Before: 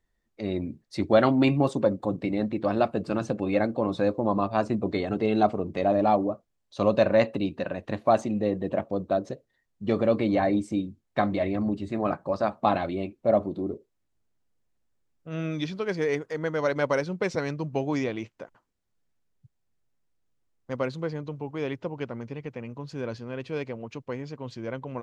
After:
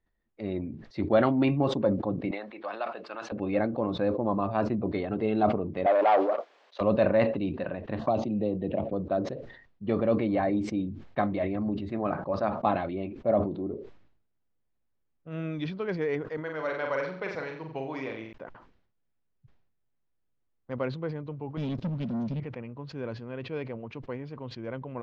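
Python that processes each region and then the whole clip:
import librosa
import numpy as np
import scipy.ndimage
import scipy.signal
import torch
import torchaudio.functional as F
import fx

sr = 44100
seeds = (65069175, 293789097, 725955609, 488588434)

y = fx.chain(x, sr, fx.highpass(hz=890.0, slope=12),
    fx.band_squash(depth_pct=40), at=(2.31, 3.32))
y = fx.chain(y, sr, fx.leveller(passes=2),
    fx.highpass(hz=440.0, slope=24), at=(5.86, 6.81))
y = fx.chain(y, sr, fx.env_phaser(low_hz=380.0, high_hz=1700.0, full_db=-22.5),
    fx.band_squash(depth_pct=70), at=(7.99, 8.93))
y = fx.chain(y, sr, fx.low_shelf(hz=440.0, db=-11.5),
    fx.room_flutter(wall_m=7.7, rt60_s=0.53), at=(16.37, 18.33))
y = fx.chain(y, sr, fx.curve_eq(hz=(130.0, 210.0, 360.0, 1900.0, 3900.0), db=(0, 11, -14, -17, 5)),
    fx.leveller(passes=3), at=(21.57, 22.4))
y = scipy.signal.sosfilt(scipy.signal.bessel(4, 2800.0, 'lowpass', norm='mag', fs=sr, output='sos'), y)
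y = fx.sustainer(y, sr, db_per_s=75.0)
y = y * 10.0 ** (-3.0 / 20.0)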